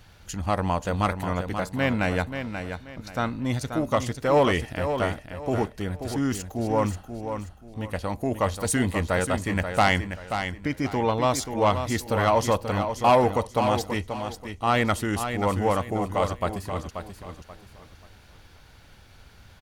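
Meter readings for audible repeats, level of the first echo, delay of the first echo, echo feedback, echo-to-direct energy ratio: 3, −8.0 dB, 533 ms, 30%, −7.5 dB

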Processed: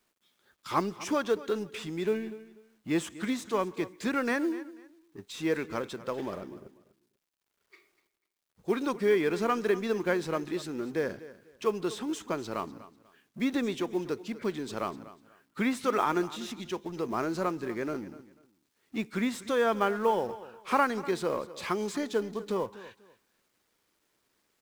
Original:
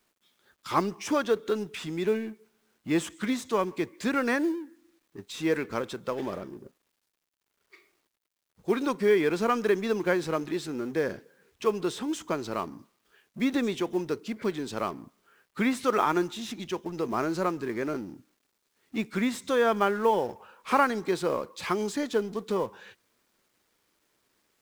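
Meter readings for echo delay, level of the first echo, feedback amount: 245 ms, −17.0 dB, 24%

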